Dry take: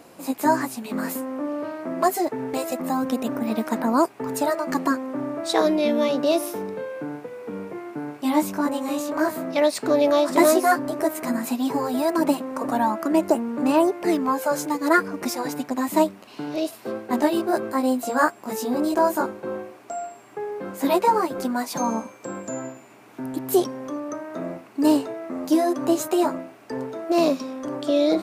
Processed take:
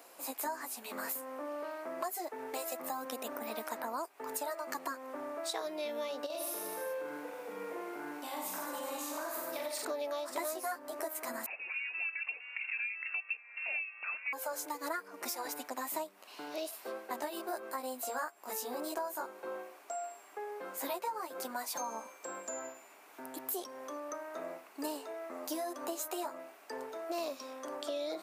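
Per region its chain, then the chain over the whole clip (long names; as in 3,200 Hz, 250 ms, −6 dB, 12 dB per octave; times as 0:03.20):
0:06.26–0:09.85: downward compressor, threshold −28 dBFS + reverse bouncing-ball delay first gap 40 ms, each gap 1.2×, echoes 6, each echo −2 dB
0:11.46–0:14.33: linear-phase brick-wall high-pass 530 Hz + voice inversion scrambler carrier 3,300 Hz
whole clip: high-pass filter 570 Hz 12 dB per octave; high-shelf EQ 11,000 Hz +11 dB; downward compressor 6 to 1, threshold −29 dBFS; level −6 dB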